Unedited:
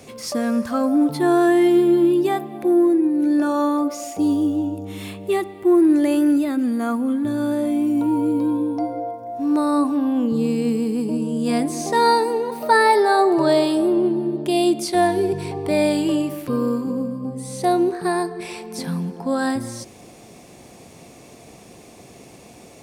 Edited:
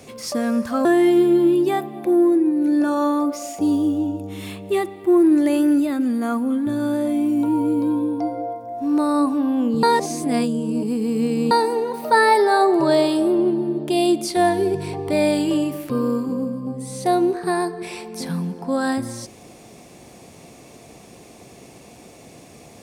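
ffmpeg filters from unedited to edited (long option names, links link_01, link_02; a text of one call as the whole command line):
ffmpeg -i in.wav -filter_complex "[0:a]asplit=4[link_01][link_02][link_03][link_04];[link_01]atrim=end=0.852[link_05];[link_02]atrim=start=1.428:end=10.412[link_06];[link_03]atrim=start=10.408:end=12.092,asetpts=PTS-STARTPTS,areverse[link_07];[link_04]atrim=start=12.088[link_08];[link_05][link_06]acrossfade=duration=0.004:curve1=hsin:curve2=hsin[link_09];[link_09][link_07]acrossfade=duration=0.004:curve1=hsin:curve2=hsin[link_10];[link_10][link_08]acrossfade=duration=0.004:curve1=hsin:curve2=hsin" out.wav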